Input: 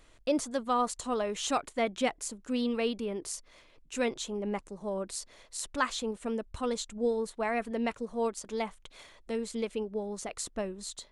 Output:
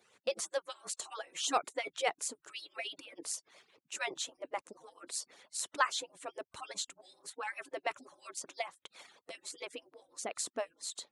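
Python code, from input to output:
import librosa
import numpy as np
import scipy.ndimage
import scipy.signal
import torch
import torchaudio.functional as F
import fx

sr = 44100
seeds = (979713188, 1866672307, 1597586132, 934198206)

y = fx.hpss_only(x, sr, part='percussive')
y = scipy.signal.sosfilt(scipy.signal.butter(2, 260.0, 'highpass', fs=sr, output='sos'), y)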